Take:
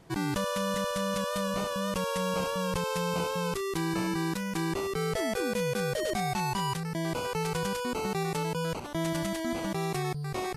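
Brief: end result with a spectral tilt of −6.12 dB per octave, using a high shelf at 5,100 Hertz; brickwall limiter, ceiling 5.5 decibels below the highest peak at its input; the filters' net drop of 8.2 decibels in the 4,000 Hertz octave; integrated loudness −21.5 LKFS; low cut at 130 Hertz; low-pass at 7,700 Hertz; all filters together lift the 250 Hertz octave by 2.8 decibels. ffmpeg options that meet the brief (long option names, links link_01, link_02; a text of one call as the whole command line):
ffmpeg -i in.wav -af "highpass=130,lowpass=7700,equalizer=frequency=250:width_type=o:gain=5.5,equalizer=frequency=4000:width_type=o:gain=-8.5,highshelf=frequency=5100:gain=-6,volume=10.5dB,alimiter=limit=-13dB:level=0:latency=1" out.wav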